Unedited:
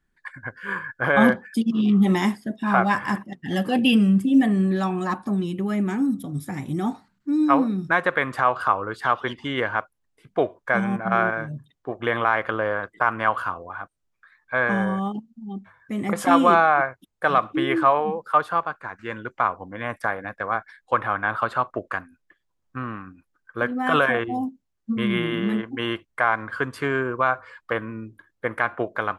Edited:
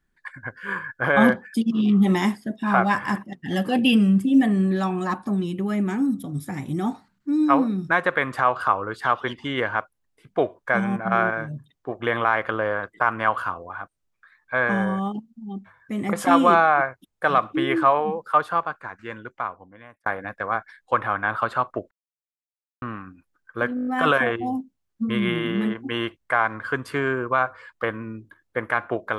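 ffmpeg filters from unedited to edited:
-filter_complex "[0:a]asplit=10[s0][s1][s2][s3][s4][s5][s6][s7][s8][s9];[s0]atrim=end=20.06,asetpts=PTS-STARTPTS,afade=t=out:st=18.7:d=1.36[s10];[s1]atrim=start=20.06:end=21.91,asetpts=PTS-STARTPTS,afade=t=in:d=0.004:c=hsin,afade=t=out:st=1.846:d=0.004:c=hsin[s11];[s2]atrim=start=21.91:end=22.82,asetpts=PTS-STARTPTS,volume=0[s12];[s3]atrim=start=22.82:end=23.772,asetpts=PTS-STARTPTS,afade=t=in:d=0.004:c=hsin[s13];[s4]atrim=start=23.748:end=23.772[s14];[s5]atrim=start=23.748:end=23.772[s15];[s6]atrim=start=23.748:end=23.772[s16];[s7]atrim=start=23.748:end=23.772[s17];[s8]atrim=start=23.748:end=23.772[s18];[s9]atrim=start=23.748[s19];[s10][s11][s12][s13]concat=n=4:v=0:a=1[s20];[s20][s14]acrossfade=d=0.004:c1=hsin:c2=hsin[s21];[s21][s15]acrossfade=d=0.004:c1=hsin:c2=hsin[s22];[s22][s16]acrossfade=d=0.004:c1=hsin:c2=hsin[s23];[s23][s17]acrossfade=d=0.004:c1=hsin:c2=hsin[s24];[s24][s18]acrossfade=d=0.004:c1=hsin:c2=hsin[s25];[s25][s19]acrossfade=d=0.004:c1=hsin:c2=hsin"

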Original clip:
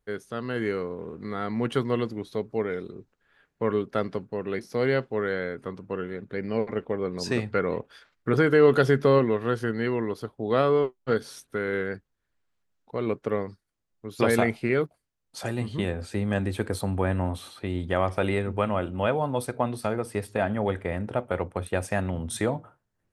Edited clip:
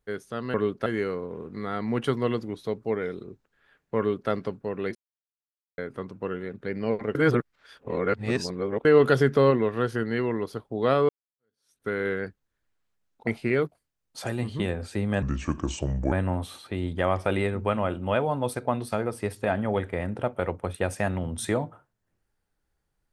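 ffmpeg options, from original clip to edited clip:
-filter_complex "[0:a]asplit=11[s0][s1][s2][s3][s4][s5][s6][s7][s8][s9][s10];[s0]atrim=end=0.542[s11];[s1]atrim=start=3.658:end=3.982[s12];[s2]atrim=start=0.538:end=4.63,asetpts=PTS-STARTPTS,afade=t=out:st=4.088:d=0.004:c=hsin[s13];[s3]atrim=start=4.63:end=5.46,asetpts=PTS-STARTPTS,volume=0[s14];[s4]atrim=start=5.46:end=6.832,asetpts=PTS-STARTPTS,afade=t=in:d=0.004:c=hsin[s15];[s5]atrim=start=6.828:end=8.532,asetpts=PTS-STARTPTS,areverse[s16];[s6]atrim=start=8.528:end=10.77,asetpts=PTS-STARTPTS,afade=t=out:st=2.238:d=0.004:c=hsin[s17];[s7]atrim=start=10.77:end=12.952,asetpts=PTS-STARTPTS,afade=t=in:d=0.79:c=exp[s18];[s8]atrim=start=14.458:end=16.414[s19];[s9]atrim=start=16.41:end=17.04,asetpts=PTS-STARTPTS,asetrate=30870,aresample=44100[s20];[s10]atrim=start=17.036[s21];[s11][s12]acrossfade=d=0.004:c1=hsin:c2=hsin[s22];[s13][s14][s15]concat=n=3:v=0:a=1[s23];[s22][s23]acrossfade=d=0.004:c1=hsin:c2=hsin[s24];[s24][s16]acrossfade=d=0.004:c1=hsin:c2=hsin[s25];[s17][s18]concat=n=2:v=0:a=1[s26];[s25][s26]acrossfade=d=0.004:c1=hsin:c2=hsin[s27];[s27][s19]acrossfade=d=0.004:c1=hsin:c2=hsin[s28];[s28][s20]acrossfade=d=0.004:c1=hsin:c2=hsin[s29];[s29][s21]acrossfade=d=0.004:c1=hsin:c2=hsin"

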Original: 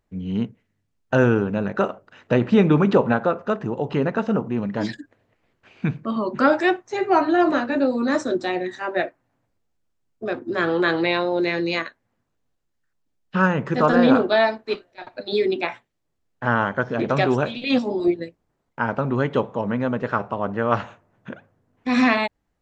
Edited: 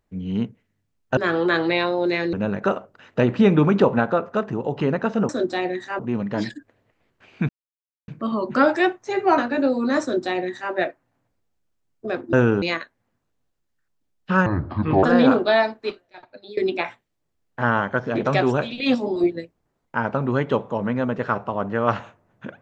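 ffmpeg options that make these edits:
-filter_complex "[0:a]asplit=12[s0][s1][s2][s3][s4][s5][s6][s7][s8][s9][s10][s11];[s0]atrim=end=1.172[s12];[s1]atrim=start=10.508:end=11.672[s13];[s2]atrim=start=1.458:end=4.422[s14];[s3]atrim=start=8.198:end=8.902[s15];[s4]atrim=start=4.418:end=5.92,asetpts=PTS-STARTPTS,afade=t=out:st=1.498:d=0.004:c=hsin,apad=pad_dur=0.59[s16];[s5]atrim=start=5.92:end=7.222,asetpts=PTS-STARTPTS,afade=t=in:d=0.004:c=hsin[s17];[s6]atrim=start=7.558:end=10.512[s18];[s7]atrim=start=1.168:end=1.462[s19];[s8]atrim=start=11.668:end=13.514[s20];[s9]atrim=start=13.51:end=13.87,asetpts=PTS-STARTPTS,asetrate=27783,aresample=44100[s21];[s10]atrim=start=13.866:end=15.41,asetpts=PTS-STARTPTS,afade=t=out:st=0.654:d=0.89:silence=0.0891251[s22];[s11]atrim=start=15.41,asetpts=PTS-STARTPTS,afade=t=in:d=0.004:c=hsin:silence=0.0891251[s23];[s12][s13]acrossfade=d=0.004:c1=hsin:c2=hsin[s24];[s24][s14]acrossfade=d=0.004:c1=hsin:c2=hsin[s25];[s25][s15]acrossfade=d=0.004:c1=hsin:c2=hsin[s26];[s16][s17]concat=n=2:v=0:a=1[s27];[s26][s27]acrossfade=d=0.004:c1=hsin:c2=hsin[s28];[s28][s18]acrossfade=d=0.004:c1=hsin:c2=hsin[s29];[s29][s19]acrossfade=d=0.004:c1=hsin:c2=hsin[s30];[s30][s20]acrossfade=d=0.004:c1=hsin:c2=hsin[s31];[s31][s21]acrossfade=d=0.004:c1=hsin:c2=hsin[s32];[s22][s23]concat=n=2:v=0:a=1[s33];[s32][s33]acrossfade=d=0.004:c1=hsin:c2=hsin"

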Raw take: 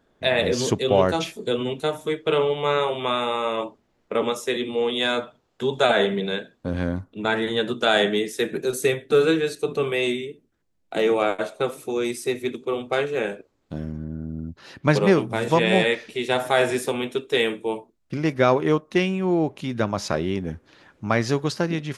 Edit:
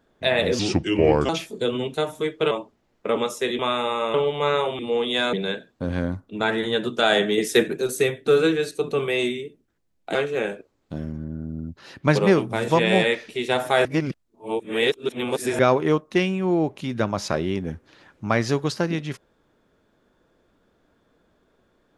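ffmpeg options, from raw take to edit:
-filter_complex "[0:a]asplit=13[s0][s1][s2][s3][s4][s5][s6][s7][s8][s9][s10][s11][s12];[s0]atrim=end=0.594[s13];[s1]atrim=start=0.59:end=1.15,asetpts=PTS-STARTPTS,asetrate=35280,aresample=44100[s14];[s2]atrim=start=1.146:end=2.372[s15];[s3]atrim=start=3.568:end=4.652[s16];[s4]atrim=start=3.018:end=3.572[s17];[s5]atrim=start=2.368:end=3.022[s18];[s6]atrim=start=4.648:end=5.192[s19];[s7]atrim=start=6.168:end=8.222[s20];[s8]atrim=start=8.218:end=8.522,asetpts=PTS-STARTPTS,volume=2.11[s21];[s9]atrim=start=8.518:end=10.992[s22];[s10]atrim=start=12.948:end=16.652[s23];[s11]atrim=start=16.648:end=18.392,asetpts=PTS-STARTPTS,areverse[s24];[s12]atrim=start=18.388[s25];[s13][s14]acrossfade=d=0.004:c1=hsin:c2=hsin[s26];[s26][s15]acrossfade=d=0.004:c1=hsin:c2=hsin[s27];[s27][s16]acrossfade=d=0.004:c1=hsin:c2=hsin[s28];[s28][s17]acrossfade=d=0.004:c1=hsin:c2=hsin[s29];[s29][s18]acrossfade=d=0.004:c1=hsin:c2=hsin[s30];[s30][s19]acrossfade=d=0.004:c1=hsin:c2=hsin[s31];[s31][s20]acrossfade=d=0.004:c1=hsin:c2=hsin[s32];[s32][s21]acrossfade=d=0.004:c1=hsin:c2=hsin[s33];[s33][s22]acrossfade=d=0.004:c1=hsin:c2=hsin[s34];[s34][s23]acrossfade=d=0.004:c1=hsin:c2=hsin[s35];[s35][s24]acrossfade=d=0.004:c1=hsin:c2=hsin[s36];[s36][s25]acrossfade=d=0.004:c1=hsin:c2=hsin"

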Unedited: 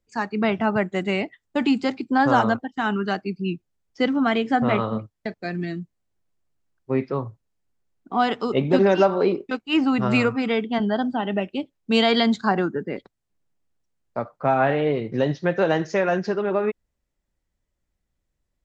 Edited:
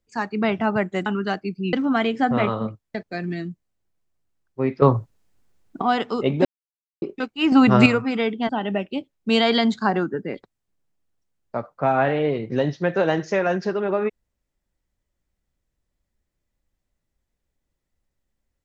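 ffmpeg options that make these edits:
-filter_complex "[0:a]asplit=10[s0][s1][s2][s3][s4][s5][s6][s7][s8][s9];[s0]atrim=end=1.062[s10];[s1]atrim=start=2.868:end=3.542[s11];[s2]atrim=start=4.038:end=7.132[s12];[s3]atrim=start=7.128:end=8.132,asetpts=PTS-STARTPTS,volume=3.76[s13];[s4]atrim=start=8.128:end=8.76,asetpts=PTS-STARTPTS,afade=t=out:st=0.628:d=0.004:c=hsin[s14];[s5]atrim=start=8.76:end=9.33,asetpts=PTS-STARTPTS,volume=0[s15];[s6]atrim=start=9.33:end=9.832,asetpts=PTS-STARTPTS,afade=t=in:d=0.004:c=hsin[s16];[s7]atrim=start=9.828:end=10.172,asetpts=PTS-STARTPTS,volume=2.24[s17];[s8]atrim=start=10.168:end=10.802[s18];[s9]atrim=start=11.108[s19];[s10][s11]acrossfade=d=0.004:c1=hsin:c2=hsin[s20];[s20][s12]acrossfade=d=0.004:c1=hsin:c2=hsin[s21];[s21][s13]acrossfade=d=0.004:c1=hsin:c2=hsin[s22];[s14][s15][s16]concat=n=3:v=0:a=1[s23];[s22][s23]acrossfade=d=0.004:c1=hsin:c2=hsin[s24];[s24][s17]acrossfade=d=0.004:c1=hsin:c2=hsin[s25];[s25][s18]acrossfade=d=0.004:c1=hsin:c2=hsin[s26];[s26][s19]acrossfade=d=0.004:c1=hsin:c2=hsin"

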